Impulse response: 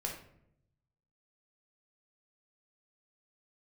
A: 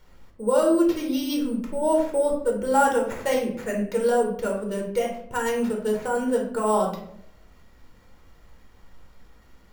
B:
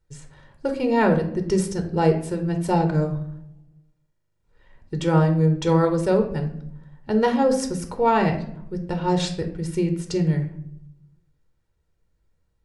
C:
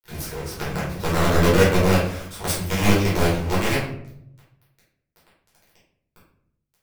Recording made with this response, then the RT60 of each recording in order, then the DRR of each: A; 0.75, 0.75, 0.75 s; -0.5, 5.0, -9.0 dB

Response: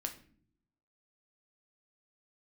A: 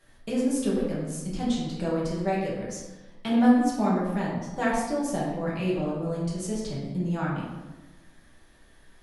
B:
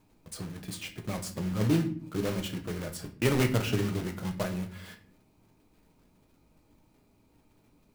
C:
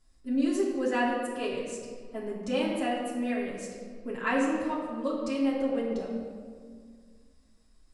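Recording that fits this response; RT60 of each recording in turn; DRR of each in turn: B; 1.1 s, not exponential, 1.9 s; -7.0, 4.5, -6.5 dB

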